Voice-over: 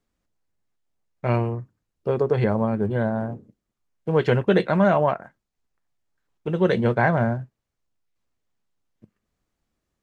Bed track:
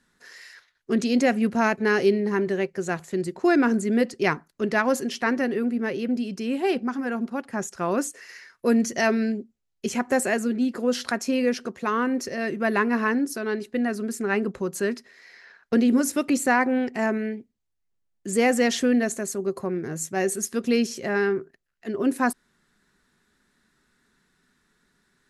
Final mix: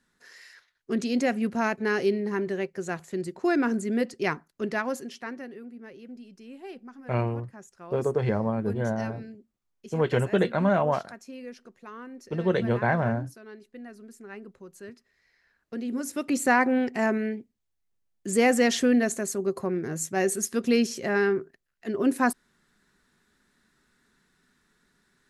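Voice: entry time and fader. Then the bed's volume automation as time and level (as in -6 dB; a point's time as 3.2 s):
5.85 s, -4.5 dB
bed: 4.65 s -4.5 dB
5.64 s -18 dB
15.56 s -18 dB
16.5 s -0.5 dB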